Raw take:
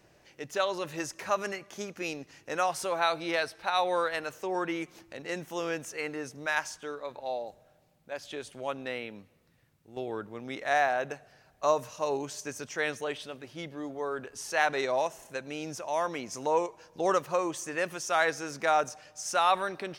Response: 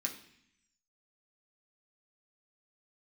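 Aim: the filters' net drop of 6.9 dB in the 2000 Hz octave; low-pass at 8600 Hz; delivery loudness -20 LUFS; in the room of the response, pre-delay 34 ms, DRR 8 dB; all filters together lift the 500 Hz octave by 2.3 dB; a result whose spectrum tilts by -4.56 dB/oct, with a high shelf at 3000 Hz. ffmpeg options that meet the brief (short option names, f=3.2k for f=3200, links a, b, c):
-filter_complex "[0:a]lowpass=8.6k,equalizer=f=500:t=o:g=3.5,equalizer=f=2k:t=o:g=-7.5,highshelf=f=3k:g=-6,asplit=2[a][b];[1:a]atrim=start_sample=2205,adelay=34[c];[b][c]afir=irnorm=-1:irlink=0,volume=-9dB[d];[a][d]amix=inputs=2:normalize=0,volume=11.5dB"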